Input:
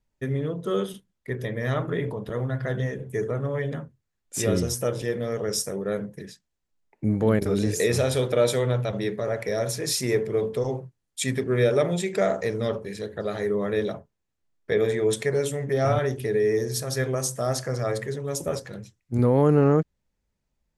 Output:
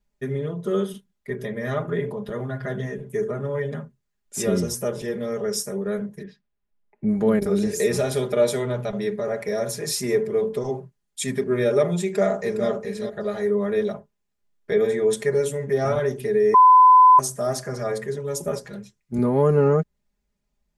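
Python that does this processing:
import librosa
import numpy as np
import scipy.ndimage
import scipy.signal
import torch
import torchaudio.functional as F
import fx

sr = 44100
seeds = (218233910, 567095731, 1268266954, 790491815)

y = fx.air_absorb(x, sr, metres=320.0, at=(6.23, 7.09))
y = fx.echo_throw(y, sr, start_s=12.04, length_s=0.64, ms=410, feedback_pct=15, wet_db=-8.5)
y = fx.edit(y, sr, fx.bleep(start_s=16.54, length_s=0.65, hz=1010.0, db=-11.5), tone=tone)
y = y + 0.78 * np.pad(y, (int(4.9 * sr / 1000.0), 0))[:len(y)]
y = fx.dynamic_eq(y, sr, hz=3300.0, q=0.88, threshold_db=-41.0, ratio=4.0, max_db=-4)
y = F.gain(torch.from_numpy(y), -1.0).numpy()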